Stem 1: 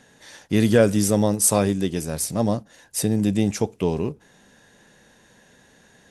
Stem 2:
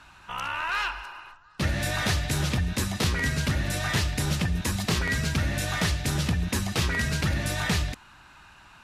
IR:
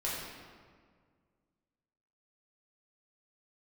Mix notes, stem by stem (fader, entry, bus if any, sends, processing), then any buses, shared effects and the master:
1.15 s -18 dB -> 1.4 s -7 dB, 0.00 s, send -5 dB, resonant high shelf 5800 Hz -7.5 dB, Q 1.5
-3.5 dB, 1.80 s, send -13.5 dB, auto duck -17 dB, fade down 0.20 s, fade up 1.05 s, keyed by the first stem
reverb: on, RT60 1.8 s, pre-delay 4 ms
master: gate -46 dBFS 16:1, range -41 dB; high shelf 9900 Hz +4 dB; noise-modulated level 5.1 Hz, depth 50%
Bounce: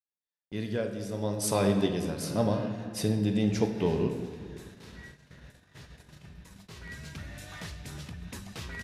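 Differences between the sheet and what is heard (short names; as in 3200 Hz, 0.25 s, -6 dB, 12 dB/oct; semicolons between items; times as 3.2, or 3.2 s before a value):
stem 2 -3.5 dB -> -14.5 dB; master: missing high shelf 9900 Hz +4 dB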